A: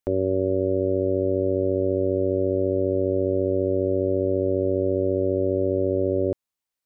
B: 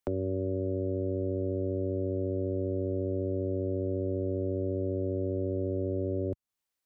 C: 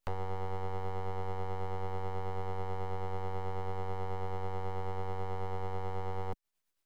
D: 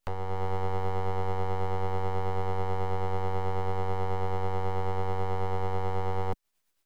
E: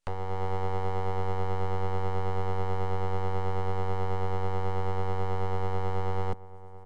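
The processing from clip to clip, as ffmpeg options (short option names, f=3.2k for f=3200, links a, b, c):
-filter_complex "[0:a]acrossover=split=86|260[a][b][c];[a]acompressor=threshold=-43dB:ratio=4[d];[b]acompressor=threshold=-34dB:ratio=4[e];[c]acompressor=threshold=-35dB:ratio=4[f];[d][e][f]amix=inputs=3:normalize=0"
-filter_complex "[0:a]aemphasis=mode=production:type=cd,acrossover=split=550[a][b];[a]aeval=exprs='val(0)*(1-0.5/2+0.5/2*cos(2*PI*9.2*n/s))':c=same[c];[b]aeval=exprs='val(0)*(1-0.5/2-0.5/2*cos(2*PI*9.2*n/s))':c=same[d];[c][d]amix=inputs=2:normalize=0,aeval=exprs='abs(val(0))':c=same"
-af "dynaudnorm=f=220:g=3:m=4.5dB,volume=2.5dB"
-filter_complex "[0:a]asplit=2[a][b];[b]adelay=1108,volume=-16dB,highshelf=f=4k:g=-24.9[c];[a][c]amix=inputs=2:normalize=0,aresample=22050,aresample=44100"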